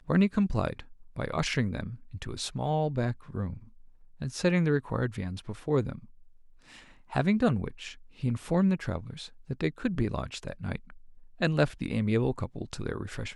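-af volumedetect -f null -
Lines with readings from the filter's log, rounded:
mean_volume: -30.4 dB
max_volume: -12.1 dB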